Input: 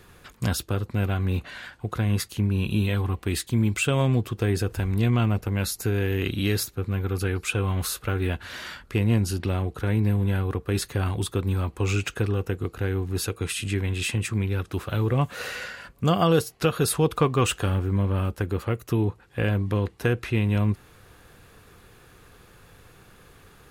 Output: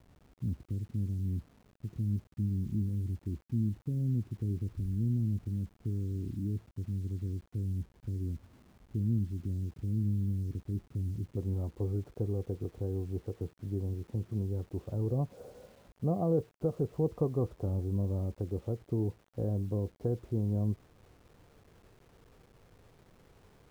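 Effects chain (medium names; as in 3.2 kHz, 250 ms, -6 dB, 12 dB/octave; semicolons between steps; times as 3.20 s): inverse Chebyshev low-pass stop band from 1.3 kHz, stop band 70 dB, from 11.36 s stop band from 3.1 kHz; bit crusher 9-bit; trim -8 dB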